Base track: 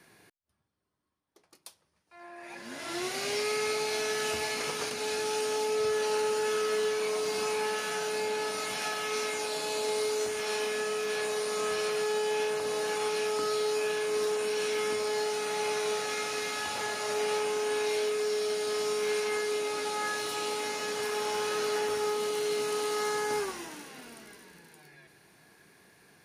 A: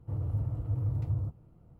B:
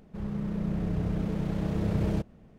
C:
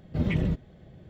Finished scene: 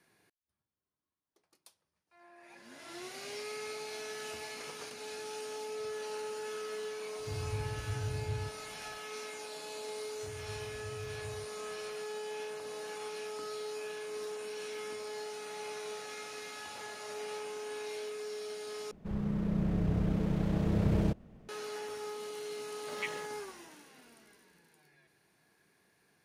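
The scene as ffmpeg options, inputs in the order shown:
-filter_complex "[1:a]asplit=2[a][b];[0:a]volume=-11dB[c];[3:a]highpass=1k[d];[c]asplit=2[e][f];[e]atrim=end=18.914[g];[2:a]atrim=end=2.58,asetpts=PTS-STARTPTS,volume=-1dB[h];[f]atrim=start=21.486[i];[a]atrim=end=1.79,asetpts=PTS-STARTPTS,volume=-6.5dB,afade=t=in:d=0.004:c=hsin,afade=t=out:st=1.786:d=0.004:c=hsin,adelay=7190[j];[b]atrim=end=1.79,asetpts=PTS-STARTPTS,volume=-16dB,afade=t=in:d=0.004:c=hsin,afade=t=out:st=1.786:d=0.004:c=hsin,adelay=10150[k];[d]atrim=end=1.09,asetpts=PTS-STARTPTS,volume=-1dB,afade=t=in:d=0.004:c=hsin,afade=t=out:st=1.086:d=0.004:c=hsin,adelay=22720[l];[g][h]acrossfade=d=0.004:c1=hsin:c2=hsin[m];[m][i]acrossfade=d=0.004:c1=hsin:c2=hsin[n];[n][j][k][l]amix=inputs=4:normalize=0"

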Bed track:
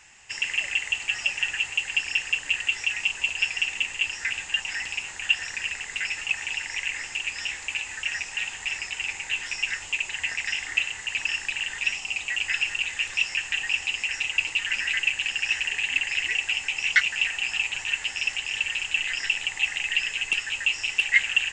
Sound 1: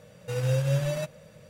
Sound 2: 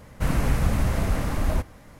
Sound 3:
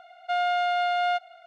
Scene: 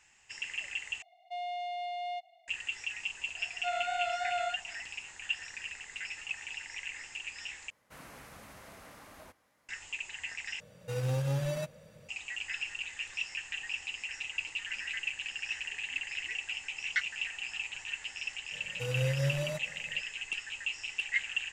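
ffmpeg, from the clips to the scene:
-filter_complex "[3:a]asplit=2[a][b];[1:a]asplit=2[c][d];[0:a]volume=-11.5dB[e];[a]asuperstop=centerf=1500:order=8:qfactor=2.3[f];[b]flanger=delay=22.5:depth=5:speed=3[g];[2:a]highpass=f=860:p=1[h];[c]asoftclip=type=hard:threshold=-22.5dB[i];[d]aresample=32000,aresample=44100[j];[e]asplit=4[k][l][m][n];[k]atrim=end=1.024[o];[f]atrim=end=1.46,asetpts=PTS-STARTPTS,volume=-12dB[p];[l]atrim=start=2.476:end=7.704[q];[h]atrim=end=1.99,asetpts=PTS-STARTPTS,volume=-16.5dB[r];[m]atrim=start=9.686:end=10.604[s];[i]atrim=end=1.49,asetpts=PTS-STARTPTS,volume=-4.5dB[t];[n]atrim=start=12.086[u];[g]atrim=end=1.46,asetpts=PTS-STARTPTS,volume=-6dB,afade=t=in:d=0.004:c=hsin,afade=t=out:st=1.456:d=0.004:c=hsin,adelay=3350[v];[j]atrim=end=1.49,asetpts=PTS-STARTPTS,volume=-5.5dB,afade=t=in:d=0.004:c=hsin,afade=t=out:st=1.486:d=0.004:c=hsin,adelay=18520[w];[o][p]acrossfade=d=0.004:c1=hsin:c2=hsin[x];[x][q]acrossfade=d=0.004:c1=hsin:c2=hsin[y];[y][r]acrossfade=d=0.004:c1=hsin:c2=hsin[z];[z][s]acrossfade=d=0.004:c1=hsin:c2=hsin[aa];[aa][t]acrossfade=d=0.004:c1=hsin:c2=hsin[ab];[ab][u]acrossfade=d=0.004:c1=hsin:c2=hsin[ac];[ac][v][w]amix=inputs=3:normalize=0"

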